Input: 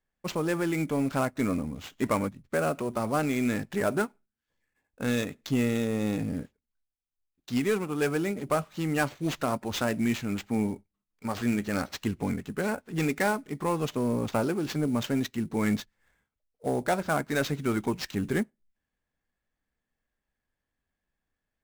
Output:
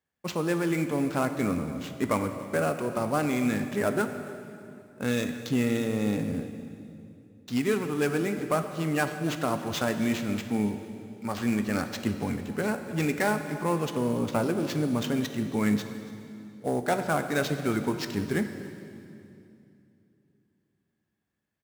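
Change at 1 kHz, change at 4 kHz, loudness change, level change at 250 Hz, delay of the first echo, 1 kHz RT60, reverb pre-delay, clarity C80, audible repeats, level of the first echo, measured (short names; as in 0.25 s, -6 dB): +0.5 dB, +0.5 dB, +0.5 dB, +1.0 dB, 0.282 s, 2.5 s, 12 ms, 9.0 dB, 1, -19.5 dB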